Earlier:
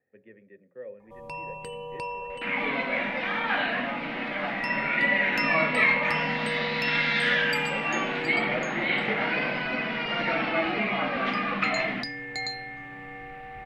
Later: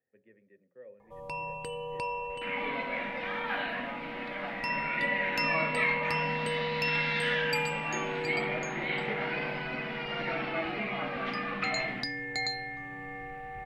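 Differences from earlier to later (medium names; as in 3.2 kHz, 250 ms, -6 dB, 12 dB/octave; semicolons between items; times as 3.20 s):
speech -9.0 dB; second sound -7.0 dB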